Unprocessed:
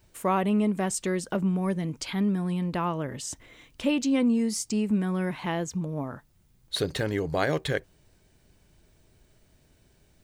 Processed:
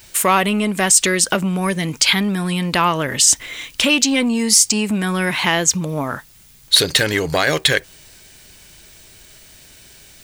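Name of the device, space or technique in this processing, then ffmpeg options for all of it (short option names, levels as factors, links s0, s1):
mastering chain: -af "equalizer=f=990:t=o:w=1.6:g=-2.5,acompressor=threshold=0.0398:ratio=2,asoftclip=type=tanh:threshold=0.1,tiltshelf=f=870:g=-8.5,alimiter=level_in=7.94:limit=0.891:release=50:level=0:latency=1,volume=0.891"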